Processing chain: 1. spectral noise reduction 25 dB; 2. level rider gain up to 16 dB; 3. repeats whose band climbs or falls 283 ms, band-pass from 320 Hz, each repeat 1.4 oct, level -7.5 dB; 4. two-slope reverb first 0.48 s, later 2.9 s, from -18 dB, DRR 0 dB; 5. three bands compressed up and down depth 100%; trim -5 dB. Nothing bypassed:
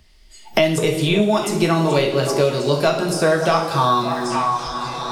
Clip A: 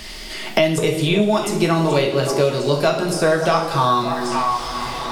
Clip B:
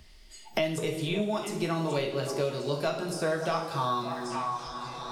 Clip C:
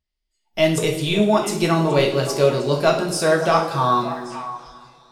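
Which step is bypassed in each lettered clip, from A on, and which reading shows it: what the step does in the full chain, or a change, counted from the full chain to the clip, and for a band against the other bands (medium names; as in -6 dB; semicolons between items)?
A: 1, momentary loudness spread change +1 LU; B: 2, loudness change -12.0 LU; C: 5, crest factor change -2.0 dB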